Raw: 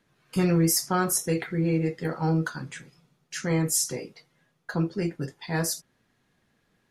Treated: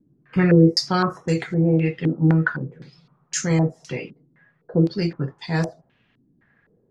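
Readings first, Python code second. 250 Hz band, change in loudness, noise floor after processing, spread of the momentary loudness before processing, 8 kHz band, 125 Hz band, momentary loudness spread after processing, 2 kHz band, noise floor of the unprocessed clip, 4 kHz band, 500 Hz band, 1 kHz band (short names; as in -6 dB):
+7.0 dB, +5.5 dB, -65 dBFS, 16 LU, -5.5 dB, +7.5 dB, 16 LU, +6.0 dB, -71 dBFS, +5.5 dB, +6.0 dB, +3.5 dB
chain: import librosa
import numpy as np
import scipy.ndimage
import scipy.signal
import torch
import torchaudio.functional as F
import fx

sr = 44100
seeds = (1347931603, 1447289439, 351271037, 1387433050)

y = fx.peak_eq(x, sr, hz=140.0, db=5.0, octaves=1.0)
y = fx.filter_held_lowpass(y, sr, hz=3.9, low_hz=290.0, high_hz=7000.0)
y = y * librosa.db_to_amplitude(2.5)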